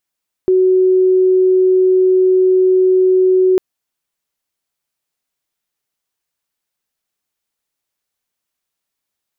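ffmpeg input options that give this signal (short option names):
-f lavfi -i "aevalsrc='0.398*sin(2*PI*372*t)':d=3.1:s=44100"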